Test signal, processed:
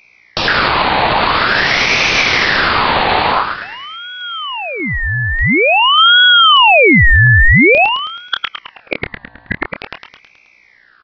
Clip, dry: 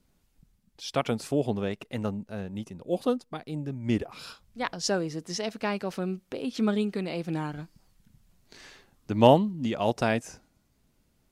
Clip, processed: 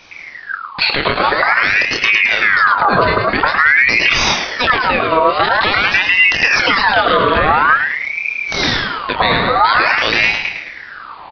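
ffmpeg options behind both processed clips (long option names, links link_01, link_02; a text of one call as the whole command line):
ffmpeg -i in.wav -filter_complex "[0:a]afftfilt=real='re*lt(hypot(re,im),0.251)':imag='im*lt(hypot(re,im),0.251)':win_size=1024:overlap=0.75,acompressor=threshold=-41dB:ratio=20,acrossover=split=580[link_01][link_02];[link_01]adelay=110[link_03];[link_03][link_02]amix=inputs=2:normalize=0,aeval=exprs='0.266*sin(PI/2*5.62*val(0)/0.266)':channel_layout=same,aeval=exprs='val(0)+0.000794*(sin(2*PI*60*n/s)+sin(2*PI*2*60*n/s)/2+sin(2*PI*3*60*n/s)/3+sin(2*PI*4*60*n/s)/4+sin(2*PI*5*60*n/s)/5)':channel_layout=same,asplit=2[link_04][link_05];[link_05]adelay=27,volume=-9dB[link_06];[link_04][link_06]amix=inputs=2:normalize=0,asplit=2[link_07][link_08];[link_08]aecho=0:1:107|214|321|428|535|642:0.376|0.195|0.102|0.0528|0.0275|0.0143[link_09];[link_07][link_09]amix=inputs=2:normalize=0,aresample=8000,aresample=44100,alimiter=level_in=19dB:limit=-1dB:release=50:level=0:latency=1,aeval=exprs='val(0)*sin(2*PI*1600*n/s+1600*0.5/0.48*sin(2*PI*0.48*n/s))':channel_layout=same" out.wav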